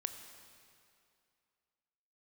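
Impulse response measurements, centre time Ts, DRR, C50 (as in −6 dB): 32 ms, 7.0 dB, 8.0 dB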